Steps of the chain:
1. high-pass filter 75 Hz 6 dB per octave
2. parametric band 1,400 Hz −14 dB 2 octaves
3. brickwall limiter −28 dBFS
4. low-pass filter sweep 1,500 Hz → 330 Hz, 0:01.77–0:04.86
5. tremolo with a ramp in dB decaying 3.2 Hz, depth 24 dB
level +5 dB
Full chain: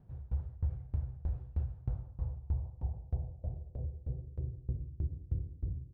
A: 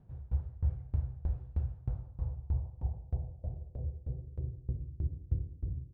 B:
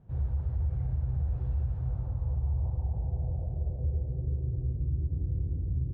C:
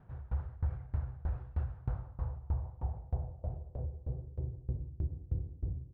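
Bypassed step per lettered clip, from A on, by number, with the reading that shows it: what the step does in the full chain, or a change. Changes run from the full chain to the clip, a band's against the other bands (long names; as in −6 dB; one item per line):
3, change in crest factor +3.0 dB
5, change in crest factor −6.0 dB
2, 1 kHz band +8.0 dB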